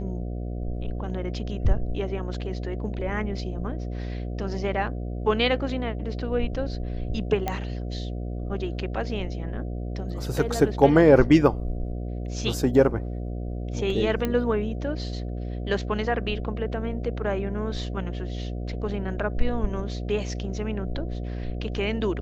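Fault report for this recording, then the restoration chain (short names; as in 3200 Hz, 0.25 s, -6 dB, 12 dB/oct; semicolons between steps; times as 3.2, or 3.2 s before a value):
buzz 60 Hz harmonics 12 -31 dBFS
7.48 pop -13 dBFS
14.25 pop -13 dBFS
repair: de-click; de-hum 60 Hz, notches 12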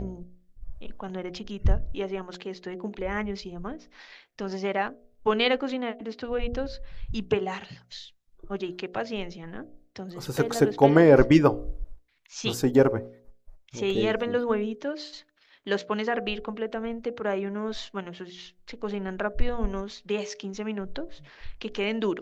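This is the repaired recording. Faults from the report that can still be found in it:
none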